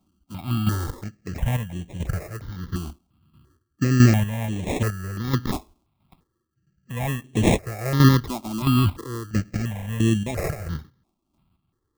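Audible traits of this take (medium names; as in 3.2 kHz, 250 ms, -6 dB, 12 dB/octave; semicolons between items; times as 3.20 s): chopped level 1.5 Hz, depth 60%, duty 35%; aliases and images of a low sample rate 1.5 kHz, jitter 0%; notches that jump at a steady rate 2.9 Hz 480–4800 Hz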